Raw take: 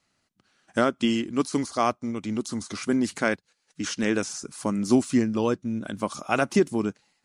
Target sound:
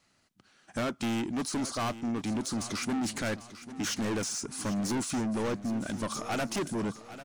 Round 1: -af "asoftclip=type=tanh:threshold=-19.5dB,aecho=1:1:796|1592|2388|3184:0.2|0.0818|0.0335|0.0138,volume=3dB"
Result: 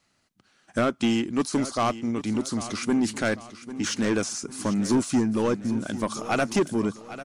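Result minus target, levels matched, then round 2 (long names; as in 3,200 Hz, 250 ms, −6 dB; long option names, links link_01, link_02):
soft clipping: distortion −7 dB
-af "asoftclip=type=tanh:threshold=-31.5dB,aecho=1:1:796|1592|2388|3184:0.2|0.0818|0.0335|0.0138,volume=3dB"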